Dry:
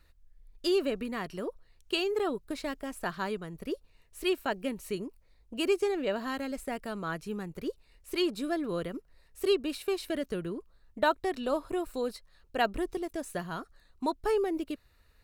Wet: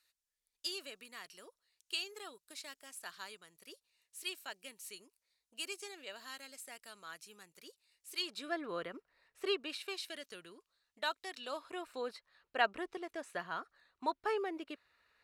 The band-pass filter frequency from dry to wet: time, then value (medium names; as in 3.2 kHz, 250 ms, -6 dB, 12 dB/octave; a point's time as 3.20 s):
band-pass filter, Q 0.67
8.15 s 7.7 kHz
8.56 s 1.6 kHz
9.44 s 1.6 kHz
10.12 s 5.1 kHz
11.33 s 5.1 kHz
12.02 s 1.7 kHz